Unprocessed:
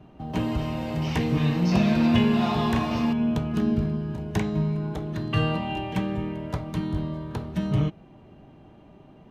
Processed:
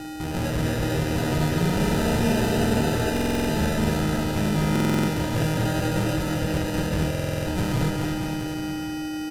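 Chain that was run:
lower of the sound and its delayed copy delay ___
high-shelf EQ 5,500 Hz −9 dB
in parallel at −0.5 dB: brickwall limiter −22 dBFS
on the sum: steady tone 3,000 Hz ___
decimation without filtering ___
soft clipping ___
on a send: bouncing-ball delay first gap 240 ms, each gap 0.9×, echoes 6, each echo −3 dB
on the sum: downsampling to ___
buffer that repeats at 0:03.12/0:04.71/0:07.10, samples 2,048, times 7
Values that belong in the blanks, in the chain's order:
1.4 ms, −32 dBFS, 40×, −21.5 dBFS, 32,000 Hz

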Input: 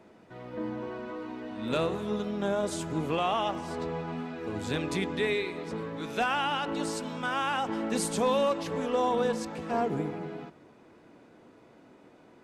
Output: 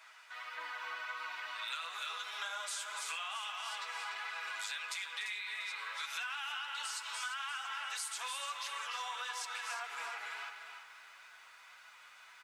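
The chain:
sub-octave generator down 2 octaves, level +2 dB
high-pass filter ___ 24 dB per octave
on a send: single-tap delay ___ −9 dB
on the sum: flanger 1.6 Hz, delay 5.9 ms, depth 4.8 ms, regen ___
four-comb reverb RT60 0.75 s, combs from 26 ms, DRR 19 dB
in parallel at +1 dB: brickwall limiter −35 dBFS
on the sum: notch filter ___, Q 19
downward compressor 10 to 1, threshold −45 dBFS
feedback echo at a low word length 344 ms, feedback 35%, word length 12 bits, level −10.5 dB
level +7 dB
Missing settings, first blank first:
1,300 Hz, 292 ms, +16%, 1,800 Hz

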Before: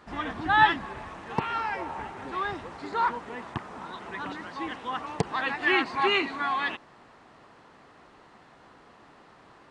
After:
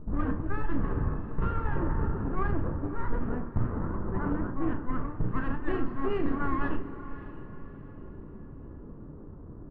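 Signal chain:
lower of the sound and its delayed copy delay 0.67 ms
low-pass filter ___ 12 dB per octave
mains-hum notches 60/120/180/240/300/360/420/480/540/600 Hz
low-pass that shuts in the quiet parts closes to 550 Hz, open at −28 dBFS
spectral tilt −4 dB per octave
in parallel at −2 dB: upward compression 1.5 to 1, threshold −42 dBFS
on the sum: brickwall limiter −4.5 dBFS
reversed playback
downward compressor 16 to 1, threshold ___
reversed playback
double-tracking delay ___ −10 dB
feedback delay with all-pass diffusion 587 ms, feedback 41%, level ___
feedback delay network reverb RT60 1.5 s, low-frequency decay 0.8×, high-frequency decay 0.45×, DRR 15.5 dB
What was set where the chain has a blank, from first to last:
1,300 Hz, −23 dBFS, 34 ms, −14 dB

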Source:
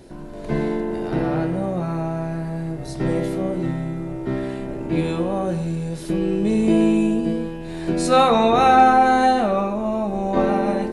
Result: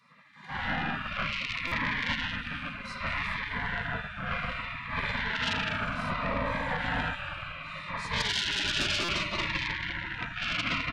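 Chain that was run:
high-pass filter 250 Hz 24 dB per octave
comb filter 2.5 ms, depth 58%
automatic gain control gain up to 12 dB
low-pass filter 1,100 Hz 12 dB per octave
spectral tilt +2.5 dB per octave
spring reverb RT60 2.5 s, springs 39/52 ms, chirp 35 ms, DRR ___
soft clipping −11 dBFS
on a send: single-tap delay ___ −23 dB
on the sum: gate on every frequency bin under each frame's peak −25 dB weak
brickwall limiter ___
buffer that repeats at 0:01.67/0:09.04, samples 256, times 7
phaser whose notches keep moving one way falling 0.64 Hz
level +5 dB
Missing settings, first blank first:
−7.5 dB, 408 ms, −21.5 dBFS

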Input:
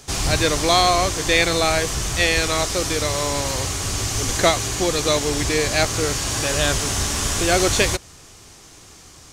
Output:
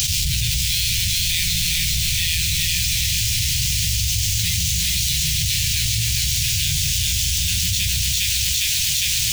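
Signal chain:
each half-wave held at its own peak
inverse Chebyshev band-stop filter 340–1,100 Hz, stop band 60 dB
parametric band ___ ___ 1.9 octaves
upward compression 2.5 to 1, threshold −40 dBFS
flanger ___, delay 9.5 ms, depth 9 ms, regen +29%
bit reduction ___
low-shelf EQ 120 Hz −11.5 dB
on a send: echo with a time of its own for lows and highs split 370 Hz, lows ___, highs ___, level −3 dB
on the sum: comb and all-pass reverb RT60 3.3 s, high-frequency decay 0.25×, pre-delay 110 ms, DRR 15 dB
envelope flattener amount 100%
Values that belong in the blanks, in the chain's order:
11,000 Hz, −2.5 dB, 0.92 Hz, 11 bits, 142 ms, 406 ms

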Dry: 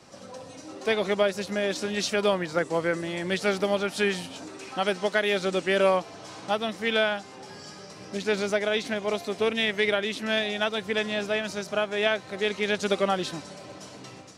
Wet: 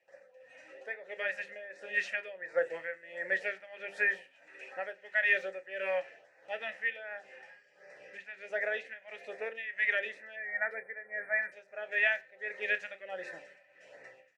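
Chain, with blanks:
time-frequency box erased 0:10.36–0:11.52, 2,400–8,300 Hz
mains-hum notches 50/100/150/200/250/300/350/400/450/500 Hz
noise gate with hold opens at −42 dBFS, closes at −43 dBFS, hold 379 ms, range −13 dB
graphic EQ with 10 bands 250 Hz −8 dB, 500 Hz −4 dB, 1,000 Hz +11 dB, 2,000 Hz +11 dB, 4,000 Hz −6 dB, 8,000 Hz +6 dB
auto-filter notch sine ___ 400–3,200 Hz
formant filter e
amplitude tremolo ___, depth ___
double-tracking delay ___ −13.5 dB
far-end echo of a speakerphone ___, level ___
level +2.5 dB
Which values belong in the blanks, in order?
1.3 Hz, 1.5 Hz, 83%, 31 ms, 90 ms, −25 dB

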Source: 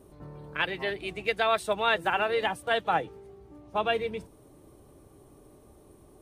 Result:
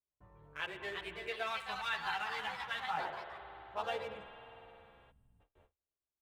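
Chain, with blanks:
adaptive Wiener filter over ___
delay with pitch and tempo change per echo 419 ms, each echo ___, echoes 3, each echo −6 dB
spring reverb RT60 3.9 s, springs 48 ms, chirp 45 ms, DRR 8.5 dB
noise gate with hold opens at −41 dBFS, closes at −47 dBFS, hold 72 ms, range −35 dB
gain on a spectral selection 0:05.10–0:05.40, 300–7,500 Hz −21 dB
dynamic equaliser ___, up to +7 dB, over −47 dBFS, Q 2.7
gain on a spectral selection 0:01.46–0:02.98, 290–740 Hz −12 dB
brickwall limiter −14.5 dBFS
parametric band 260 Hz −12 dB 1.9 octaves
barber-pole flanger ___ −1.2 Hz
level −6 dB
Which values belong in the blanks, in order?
9 samples, +2 semitones, 360 Hz, 11.7 ms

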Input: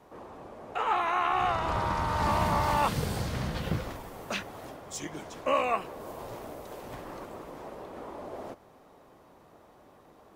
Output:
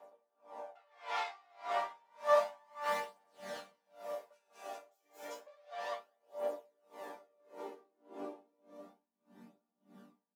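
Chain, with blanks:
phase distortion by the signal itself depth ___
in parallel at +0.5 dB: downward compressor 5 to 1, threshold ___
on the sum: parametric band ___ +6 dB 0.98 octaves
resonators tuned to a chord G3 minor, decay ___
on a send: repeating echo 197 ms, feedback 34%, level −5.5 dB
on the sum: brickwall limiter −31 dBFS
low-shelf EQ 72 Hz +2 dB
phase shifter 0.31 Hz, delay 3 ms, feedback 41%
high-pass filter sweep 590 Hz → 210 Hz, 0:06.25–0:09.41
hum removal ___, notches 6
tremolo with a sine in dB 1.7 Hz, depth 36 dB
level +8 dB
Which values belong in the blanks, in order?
0.29 ms, −40 dBFS, 180 Hz, 0.5 s, 65.27 Hz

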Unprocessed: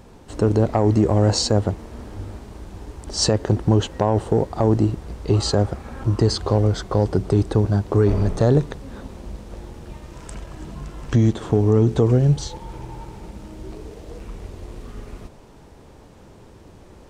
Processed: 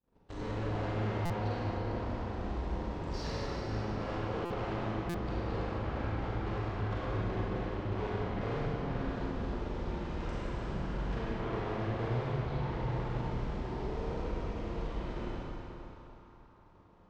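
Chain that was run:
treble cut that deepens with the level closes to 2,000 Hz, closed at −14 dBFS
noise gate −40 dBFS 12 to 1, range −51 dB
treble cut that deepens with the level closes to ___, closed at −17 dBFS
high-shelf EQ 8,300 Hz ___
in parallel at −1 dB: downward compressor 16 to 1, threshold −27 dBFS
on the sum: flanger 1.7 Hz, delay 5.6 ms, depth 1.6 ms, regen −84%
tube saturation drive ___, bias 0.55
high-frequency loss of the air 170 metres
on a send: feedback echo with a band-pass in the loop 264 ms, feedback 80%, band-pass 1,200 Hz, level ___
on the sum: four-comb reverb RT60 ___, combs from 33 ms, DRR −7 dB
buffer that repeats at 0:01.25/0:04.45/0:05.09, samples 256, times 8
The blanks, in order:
1,200 Hz, −2 dB, 40 dB, −15 dB, 3.1 s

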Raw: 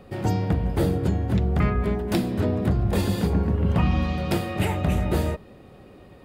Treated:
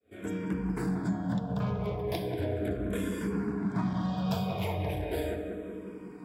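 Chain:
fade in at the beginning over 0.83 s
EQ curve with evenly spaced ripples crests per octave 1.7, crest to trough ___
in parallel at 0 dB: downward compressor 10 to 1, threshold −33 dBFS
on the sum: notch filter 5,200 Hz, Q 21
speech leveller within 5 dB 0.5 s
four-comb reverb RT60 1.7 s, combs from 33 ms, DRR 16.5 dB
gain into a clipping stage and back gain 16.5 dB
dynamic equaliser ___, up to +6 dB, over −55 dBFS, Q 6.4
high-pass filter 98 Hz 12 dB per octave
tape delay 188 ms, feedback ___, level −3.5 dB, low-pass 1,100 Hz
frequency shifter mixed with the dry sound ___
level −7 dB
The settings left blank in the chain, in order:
10 dB, 1,700 Hz, 87%, −0.37 Hz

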